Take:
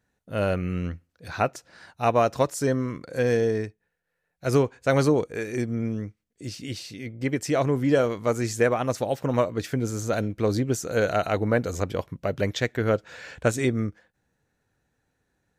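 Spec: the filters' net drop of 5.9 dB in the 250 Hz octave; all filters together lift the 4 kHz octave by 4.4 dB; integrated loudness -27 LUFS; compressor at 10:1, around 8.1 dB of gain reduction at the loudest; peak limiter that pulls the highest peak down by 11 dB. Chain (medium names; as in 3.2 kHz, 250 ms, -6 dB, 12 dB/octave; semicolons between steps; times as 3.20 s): peaking EQ 250 Hz -7.5 dB; peaking EQ 4 kHz +5.5 dB; compression 10:1, threshold -25 dBFS; trim +8 dB; peak limiter -16 dBFS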